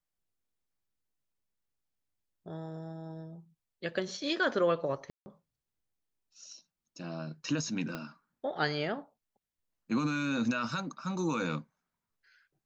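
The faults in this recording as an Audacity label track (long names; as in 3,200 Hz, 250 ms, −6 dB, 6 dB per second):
5.100000	5.260000	drop-out 160 ms
7.950000	7.950000	click −22 dBFS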